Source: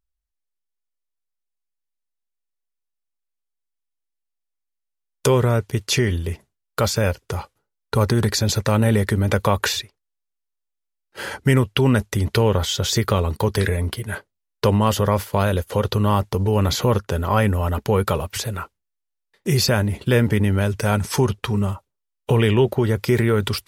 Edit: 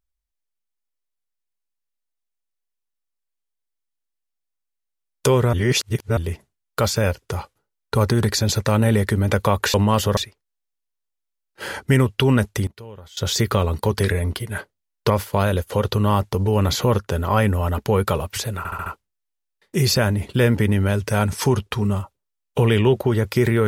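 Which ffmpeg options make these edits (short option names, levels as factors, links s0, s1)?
-filter_complex "[0:a]asplit=12[s0][s1][s2][s3][s4][s5][s6][s7][s8][s9][s10][s11];[s0]atrim=end=5.532[s12];[s1]atrim=start=5.528:end=6.172,asetpts=PTS-STARTPTS,areverse[s13];[s2]atrim=start=6.168:end=9.742[s14];[s3]atrim=start=14.668:end=15.102[s15];[s4]atrim=start=9.738:end=12.24,asetpts=PTS-STARTPTS,afade=t=out:st=2.302:d=0.2:c=log:silence=0.0841395[s16];[s5]atrim=start=12.24:end=12.74,asetpts=PTS-STARTPTS,volume=0.0841[s17];[s6]atrim=start=12.74:end=14.672,asetpts=PTS-STARTPTS,afade=t=in:d=0.2:c=log:silence=0.0841395[s18];[s7]atrim=start=15.098:end=18.652[s19];[s8]atrim=start=18.578:end=18.652[s20];[s9]atrim=start=18.578:end=18.652[s21];[s10]atrim=start=18.578:end=18.652[s22];[s11]atrim=start=18.578[s23];[s12][s13]acrossfade=d=0.004:c1=hsin:c2=hsin[s24];[s24][s14]acrossfade=d=0.004:c1=hsin:c2=hsin[s25];[s25][s15]acrossfade=d=0.004:c1=hsin:c2=hsin[s26];[s16][s17][s18]concat=n=3:v=0:a=1[s27];[s26][s27]acrossfade=d=0.004:c1=hsin:c2=hsin[s28];[s28][s19]acrossfade=d=0.004:c1=hsin:c2=hsin[s29];[s29][s20]acrossfade=d=0.004:c1=hsin:c2=hsin[s30];[s30][s21]acrossfade=d=0.004:c1=hsin:c2=hsin[s31];[s31][s22]acrossfade=d=0.004:c1=hsin:c2=hsin[s32];[s32][s23]acrossfade=d=0.004:c1=hsin:c2=hsin"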